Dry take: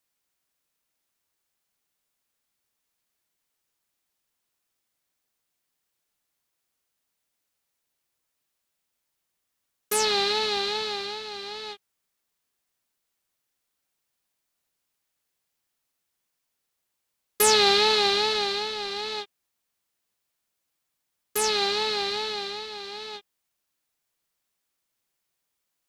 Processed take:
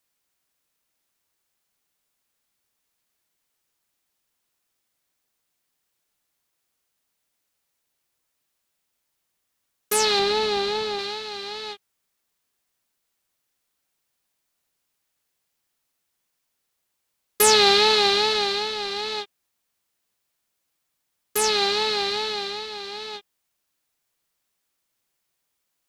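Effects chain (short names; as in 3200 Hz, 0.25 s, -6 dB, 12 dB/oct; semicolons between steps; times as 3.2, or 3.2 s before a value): 10.19–10.99 tilt shelf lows +4 dB; gain +3 dB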